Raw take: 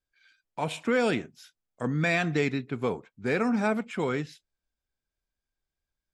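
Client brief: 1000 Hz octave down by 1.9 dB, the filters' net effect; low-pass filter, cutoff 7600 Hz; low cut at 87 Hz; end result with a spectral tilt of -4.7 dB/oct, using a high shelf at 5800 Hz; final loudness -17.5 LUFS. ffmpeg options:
-af "highpass=87,lowpass=7.6k,equalizer=f=1k:t=o:g=-3,highshelf=f=5.8k:g=7.5,volume=11.5dB"

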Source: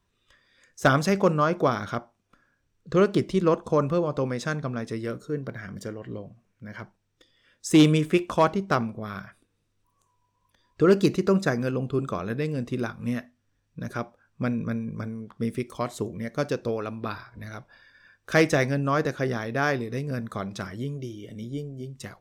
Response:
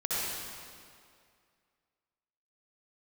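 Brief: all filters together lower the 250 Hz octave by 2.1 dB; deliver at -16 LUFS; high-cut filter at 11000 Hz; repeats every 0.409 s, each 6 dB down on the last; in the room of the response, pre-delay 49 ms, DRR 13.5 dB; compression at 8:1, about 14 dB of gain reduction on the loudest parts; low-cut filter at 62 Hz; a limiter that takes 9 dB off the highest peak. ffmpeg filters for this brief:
-filter_complex "[0:a]highpass=62,lowpass=11k,equalizer=f=250:t=o:g=-3,acompressor=threshold=-30dB:ratio=8,alimiter=level_in=1.5dB:limit=-24dB:level=0:latency=1,volume=-1.5dB,aecho=1:1:409|818|1227|1636|2045|2454:0.501|0.251|0.125|0.0626|0.0313|0.0157,asplit=2[a][b];[1:a]atrim=start_sample=2205,adelay=49[c];[b][c]afir=irnorm=-1:irlink=0,volume=-22dB[d];[a][d]amix=inputs=2:normalize=0,volume=20.5dB"

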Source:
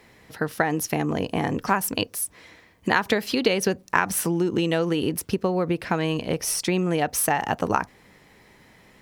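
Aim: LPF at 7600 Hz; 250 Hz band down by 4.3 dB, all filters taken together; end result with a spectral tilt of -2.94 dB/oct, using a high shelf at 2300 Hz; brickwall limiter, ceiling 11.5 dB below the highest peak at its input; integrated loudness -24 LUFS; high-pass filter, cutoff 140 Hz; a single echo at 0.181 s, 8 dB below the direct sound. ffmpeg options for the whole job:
-af "highpass=140,lowpass=7.6k,equalizer=f=250:t=o:g=-6,highshelf=f=2.3k:g=6,alimiter=limit=-12.5dB:level=0:latency=1,aecho=1:1:181:0.398,volume=2dB"

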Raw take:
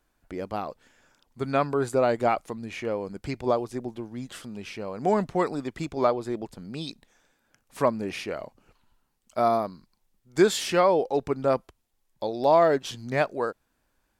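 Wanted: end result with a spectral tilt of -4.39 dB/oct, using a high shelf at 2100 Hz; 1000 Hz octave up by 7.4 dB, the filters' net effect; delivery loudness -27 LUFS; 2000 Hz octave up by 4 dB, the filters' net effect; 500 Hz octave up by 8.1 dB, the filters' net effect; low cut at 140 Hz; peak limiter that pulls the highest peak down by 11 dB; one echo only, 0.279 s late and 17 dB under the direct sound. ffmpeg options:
-af "highpass=140,equalizer=f=500:t=o:g=8.5,equalizer=f=1k:t=o:g=6.5,equalizer=f=2k:t=o:g=5.5,highshelf=f=2.1k:g=-6,alimiter=limit=-11.5dB:level=0:latency=1,aecho=1:1:279:0.141,volume=-2.5dB"

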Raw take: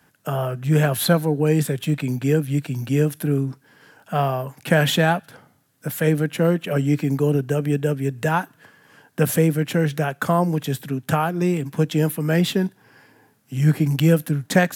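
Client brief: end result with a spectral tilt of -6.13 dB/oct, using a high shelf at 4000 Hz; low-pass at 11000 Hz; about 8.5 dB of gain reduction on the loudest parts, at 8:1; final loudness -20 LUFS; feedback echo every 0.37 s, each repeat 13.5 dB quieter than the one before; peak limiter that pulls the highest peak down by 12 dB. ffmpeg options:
-af "lowpass=11k,highshelf=f=4k:g=-7.5,acompressor=threshold=-20dB:ratio=8,alimiter=limit=-20.5dB:level=0:latency=1,aecho=1:1:370|740:0.211|0.0444,volume=10dB"

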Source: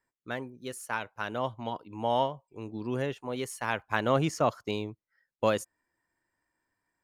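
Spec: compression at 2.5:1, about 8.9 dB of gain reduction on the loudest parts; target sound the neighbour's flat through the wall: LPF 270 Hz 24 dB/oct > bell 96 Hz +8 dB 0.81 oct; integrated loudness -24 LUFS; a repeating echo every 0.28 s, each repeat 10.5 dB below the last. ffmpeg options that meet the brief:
-af "acompressor=threshold=-34dB:ratio=2.5,lowpass=f=270:w=0.5412,lowpass=f=270:w=1.3066,equalizer=f=96:t=o:w=0.81:g=8,aecho=1:1:280|560|840:0.299|0.0896|0.0269,volume=19dB"

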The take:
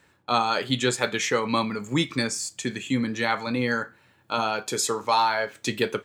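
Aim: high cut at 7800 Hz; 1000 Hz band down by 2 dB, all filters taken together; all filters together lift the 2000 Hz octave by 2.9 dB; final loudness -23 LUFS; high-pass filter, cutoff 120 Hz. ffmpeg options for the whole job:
-af "highpass=120,lowpass=7.8k,equalizer=f=1k:t=o:g=-4,equalizer=f=2k:t=o:g=5,volume=2.5dB"

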